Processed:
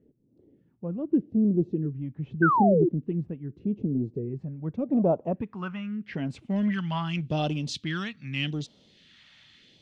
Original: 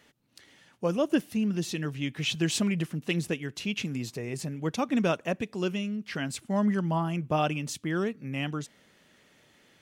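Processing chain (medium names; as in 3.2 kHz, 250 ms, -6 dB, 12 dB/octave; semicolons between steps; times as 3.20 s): phase shifter stages 2, 0.83 Hz, lowest notch 390–1800 Hz; in parallel at -8 dB: hard clipper -29.5 dBFS, distortion -9 dB; on the sum: low-pass sweep 400 Hz -> 3.9 kHz, 4.31–7.11 s; painted sound fall, 2.42–2.89 s, 320–1600 Hz -22 dBFS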